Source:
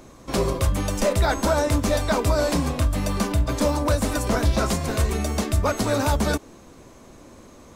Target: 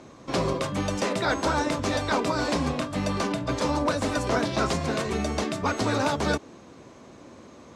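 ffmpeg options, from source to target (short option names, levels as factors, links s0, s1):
-af "afftfilt=real='re*lt(hypot(re,im),0.631)':imag='im*lt(hypot(re,im),0.631)':win_size=1024:overlap=0.75,highpass=100,lowpass=5700"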